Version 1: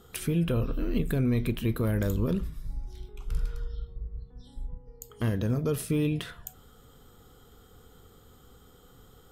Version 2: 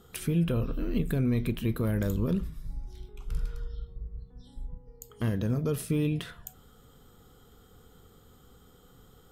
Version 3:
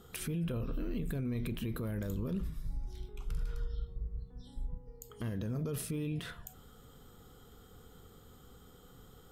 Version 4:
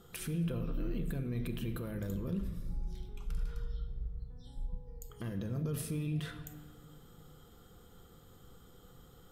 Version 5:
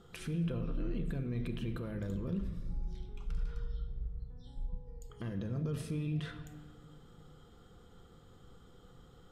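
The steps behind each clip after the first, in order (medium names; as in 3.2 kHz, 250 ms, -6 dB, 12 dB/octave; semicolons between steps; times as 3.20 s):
peaking EQ 180 Hz +3 dB 0.77 oct; trim -2 dB
peak limiter -28.5 dBFS, peak gain reduction 11 dB
simulated room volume 2200 m³, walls mixed, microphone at 0.79 m; trim -2 dB
distance through air 69 m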